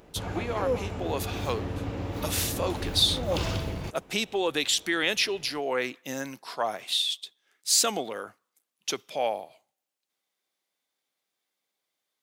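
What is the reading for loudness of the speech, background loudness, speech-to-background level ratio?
-28.5 LUFS, -33.0 LUFS, 4.5 dB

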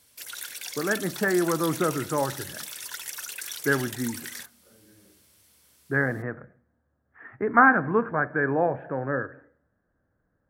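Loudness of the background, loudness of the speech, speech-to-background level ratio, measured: -35.0 LUFS, -25.5 LUFS, 9.5 dB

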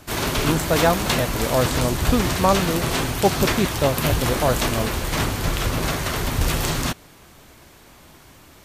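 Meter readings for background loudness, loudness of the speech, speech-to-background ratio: -23.0 LUFS, -23.5 LUFS, -0.5 dB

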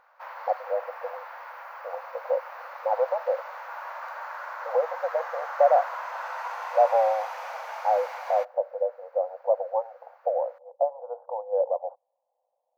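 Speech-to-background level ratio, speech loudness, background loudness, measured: 9.5 dB, -27.5 LUFS, -37.0 LUFS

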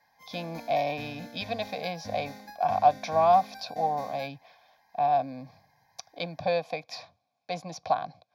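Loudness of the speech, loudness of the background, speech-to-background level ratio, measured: -29.0 LUFS, -46.0 LUFS, 17.0 dB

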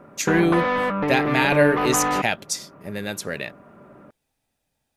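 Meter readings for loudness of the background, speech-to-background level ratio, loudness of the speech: -23.5 LUFS, 0.5 dB, -23.0 LUFS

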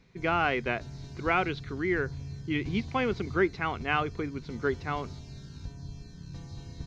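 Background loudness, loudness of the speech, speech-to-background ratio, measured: -42.5 LUFS, -30.5 LUFS, 12.0 dB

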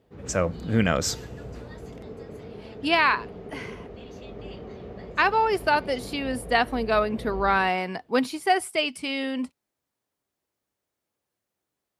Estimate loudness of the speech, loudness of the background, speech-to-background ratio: -25.0 LUFS, -41.0 LUFS, 16.0 dB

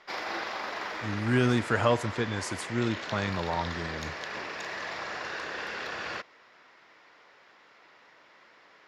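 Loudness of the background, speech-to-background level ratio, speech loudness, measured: -36.0 LUFS, 6.5 dB, -29.5 LUFS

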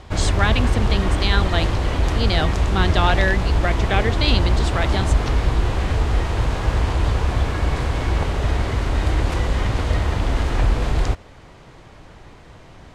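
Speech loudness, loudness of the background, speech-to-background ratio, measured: -24.0 LUFS, -21.5 LUFS, -2.5 dB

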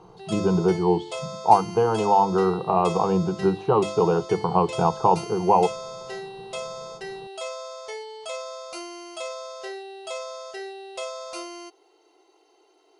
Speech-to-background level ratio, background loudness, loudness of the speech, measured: 13.5 dB, -35.5 LUFS, -22.0 LUFS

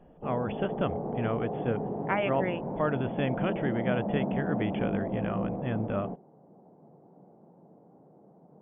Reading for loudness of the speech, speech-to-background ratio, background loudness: -32.5 LUFS, 1.5 dB, -34.0 LUFS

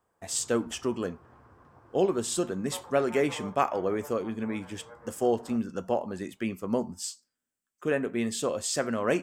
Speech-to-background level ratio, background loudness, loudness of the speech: 19.5 dB, -49.5 LUFS, -30.0 LUFS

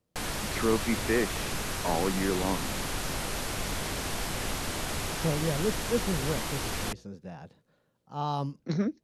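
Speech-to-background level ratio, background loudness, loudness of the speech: 1.5 dB, -33.0 LUFS, -31.5 LUFS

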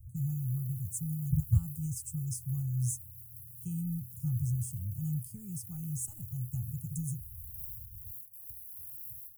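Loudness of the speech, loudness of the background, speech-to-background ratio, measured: -35.5 LUFS, -45.5 LUFS, 10.0 dB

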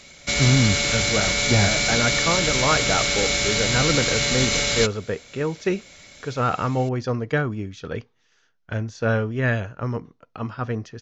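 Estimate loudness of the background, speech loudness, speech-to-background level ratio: -20.0 LUFS, -25.0 LUFS, -5.0 dB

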